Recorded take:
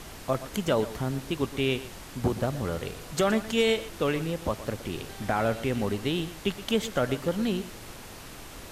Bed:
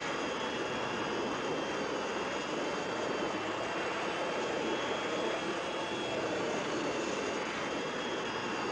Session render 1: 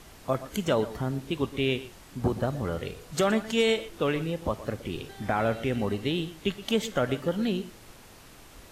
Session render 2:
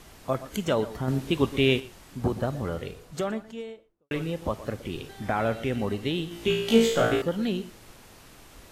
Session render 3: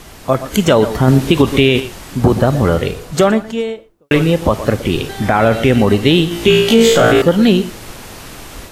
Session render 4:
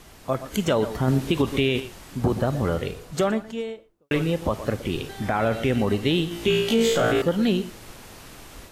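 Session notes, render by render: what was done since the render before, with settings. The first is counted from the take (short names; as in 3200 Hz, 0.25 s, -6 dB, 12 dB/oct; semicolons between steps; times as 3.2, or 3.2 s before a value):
noise print and reduce 7 dB
1.08–1.8 gain +5 dB; 2.57–4.11 studio fade out; 6.29–7.22 flutter echo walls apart 3 m, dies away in 0.69 s
AGC gain up to 5.5 dB; maximiser +12.5 dB
gain -11 dB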